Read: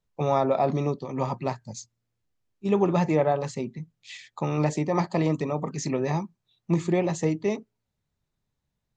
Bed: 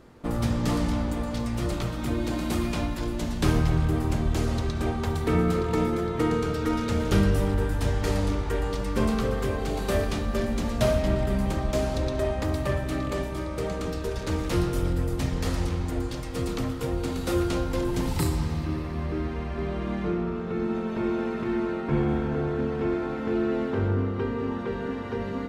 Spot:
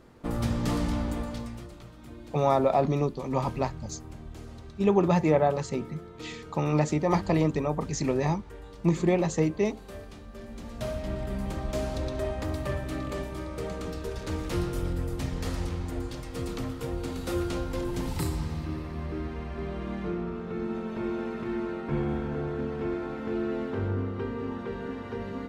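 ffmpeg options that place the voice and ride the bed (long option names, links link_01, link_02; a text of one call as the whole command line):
ffmpeg -i stem1.wav -i stem2.wav -filter_complex "[0:a]adelay=2150,volume=0dB[link_01];[1:a]volume=10.5dB,afade=type=out:start_time=1.16:duration=0.52:silence=0.177828,afade=type=in:start_time=10.35:duration=1.5:silence=0.223872[link_02];[link_01][link_02]amix=inputs=2:normalize=0" out.wav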